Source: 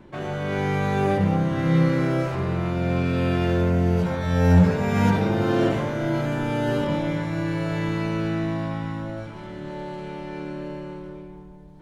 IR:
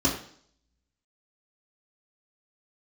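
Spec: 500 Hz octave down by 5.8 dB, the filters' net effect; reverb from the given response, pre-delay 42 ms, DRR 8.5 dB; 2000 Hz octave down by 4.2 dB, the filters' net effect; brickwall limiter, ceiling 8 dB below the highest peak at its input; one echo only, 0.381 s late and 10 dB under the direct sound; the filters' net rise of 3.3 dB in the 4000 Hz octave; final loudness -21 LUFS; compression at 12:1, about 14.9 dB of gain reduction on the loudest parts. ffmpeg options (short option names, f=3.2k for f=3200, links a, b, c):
-filter_complex "[0:a]equalizer=f=500:t=o:g=-7.5,equalizer=f=2k:t=o:g=-6.5,equalizer=f=4k:t=o:g=7,acompressor=threshold=-26dB:ratio=12,alimiter=level_in=3dB:limit=-24dB:level=0:latency=1,volume=-3dB,aecho=1:1:381:0.316,asplit=2[a][b];[1:a]atrim=start_sample=2205,adelay=42[c];[b][c]afir=irnorm=-1:irlink=0,volume=-20.5dB[d];[a][d]amix=inputs=2:normalize=0,volume=12.5dB"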